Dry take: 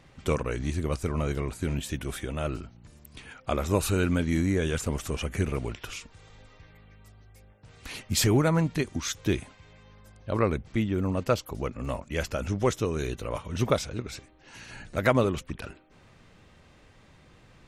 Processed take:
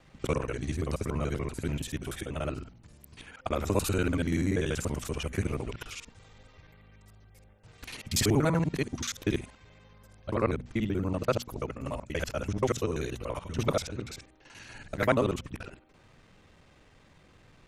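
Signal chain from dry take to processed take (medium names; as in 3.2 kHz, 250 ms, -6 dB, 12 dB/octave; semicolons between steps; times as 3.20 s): time reversed locally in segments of 48 ms; hum notches 60/120/180/240 Hz; trim -2 dB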